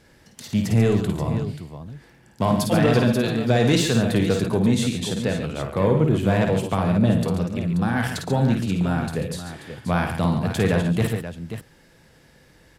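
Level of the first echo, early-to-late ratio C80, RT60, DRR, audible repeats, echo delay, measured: -6.0 dB, no reverb, no reverb, no reverb, 3, 52 ms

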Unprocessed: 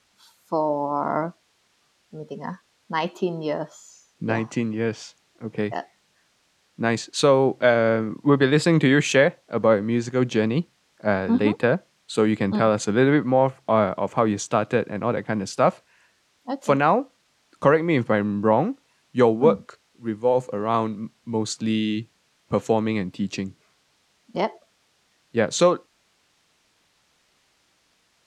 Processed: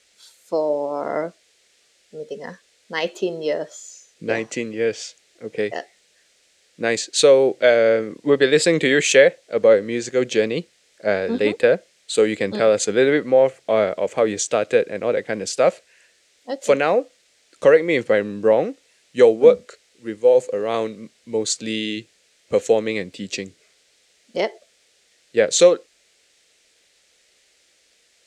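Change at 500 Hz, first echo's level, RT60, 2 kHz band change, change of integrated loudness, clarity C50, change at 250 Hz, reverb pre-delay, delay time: +5.5 dB, no echo, no reverb, +3.0 dB, +3.0 dB, no reverb, -3.5 dB, no reverb, no echo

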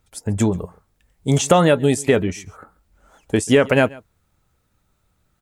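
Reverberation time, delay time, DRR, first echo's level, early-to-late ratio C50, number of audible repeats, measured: no reverb, 137 ms, no reverb, -23.0 dB, no reverb, 1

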